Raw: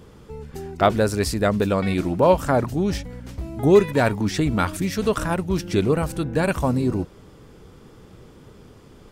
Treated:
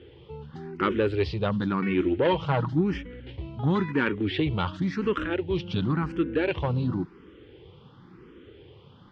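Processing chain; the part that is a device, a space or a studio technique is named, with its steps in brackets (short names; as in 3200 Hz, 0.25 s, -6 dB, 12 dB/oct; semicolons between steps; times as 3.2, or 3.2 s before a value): 2.24–2.81 comb 6.3 ms, depth 66%; barber-pole phaser into a guitar amplifier (endless phaser +0.94 Hz; soft clip -14.5 dBFS, distortion -15 dB; speaker cabinet 75–3600 Hz, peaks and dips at 220 Hz -3 dB, 350 Hz +5 dB, 660 Hz -10 dB, 3100 Hz +7 dB)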